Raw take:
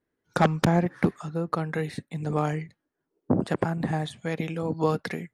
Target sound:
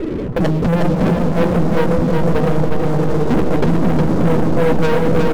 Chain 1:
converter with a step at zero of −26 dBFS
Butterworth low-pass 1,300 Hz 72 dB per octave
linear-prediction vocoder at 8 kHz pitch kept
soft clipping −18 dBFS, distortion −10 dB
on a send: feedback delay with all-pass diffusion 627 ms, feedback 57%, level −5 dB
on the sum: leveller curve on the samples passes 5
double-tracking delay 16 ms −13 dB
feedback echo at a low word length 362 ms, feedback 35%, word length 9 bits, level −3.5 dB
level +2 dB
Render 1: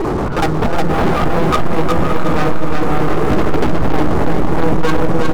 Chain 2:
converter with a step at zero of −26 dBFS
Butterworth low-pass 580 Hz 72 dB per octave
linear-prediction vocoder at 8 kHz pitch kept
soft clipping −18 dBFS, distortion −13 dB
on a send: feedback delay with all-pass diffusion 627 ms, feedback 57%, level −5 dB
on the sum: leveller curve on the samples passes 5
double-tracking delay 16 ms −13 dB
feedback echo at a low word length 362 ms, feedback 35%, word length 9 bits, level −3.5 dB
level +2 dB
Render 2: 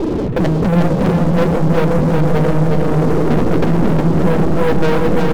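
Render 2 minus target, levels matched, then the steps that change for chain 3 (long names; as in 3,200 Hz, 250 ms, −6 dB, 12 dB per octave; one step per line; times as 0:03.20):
converter with a step at zero: distortion +5 dB
change: converter with a step at zero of −32.5 dBFS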